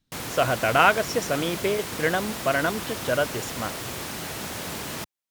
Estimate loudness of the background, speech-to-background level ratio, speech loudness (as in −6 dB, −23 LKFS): −32.0 LKFS, 7.5 dB, −24.5 LKFS